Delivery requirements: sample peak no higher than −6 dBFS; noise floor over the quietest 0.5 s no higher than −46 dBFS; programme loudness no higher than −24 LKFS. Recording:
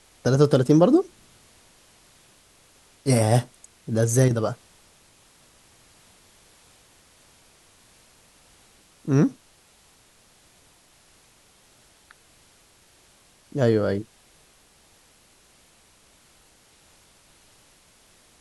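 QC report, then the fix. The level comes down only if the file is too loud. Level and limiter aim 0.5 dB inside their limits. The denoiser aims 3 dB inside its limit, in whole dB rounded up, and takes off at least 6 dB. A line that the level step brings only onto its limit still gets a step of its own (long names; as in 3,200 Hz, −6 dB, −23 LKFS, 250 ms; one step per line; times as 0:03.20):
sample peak −5.0 dBFS: out of spec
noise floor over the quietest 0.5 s −57 dBFS: in spec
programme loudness −21.5 LKFS: out of spec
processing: level −3 dB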